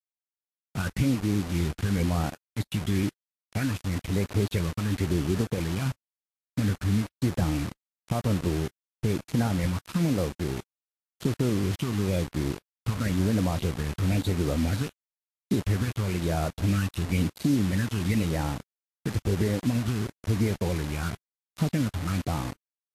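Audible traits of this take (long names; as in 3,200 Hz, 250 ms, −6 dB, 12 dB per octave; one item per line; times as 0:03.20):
phaser sweep stages 8, 0.99 Hz, lowest notch 570–3,200 Hz
a quantiser's noise floor 6 bits, dither none
Ogg Vorbis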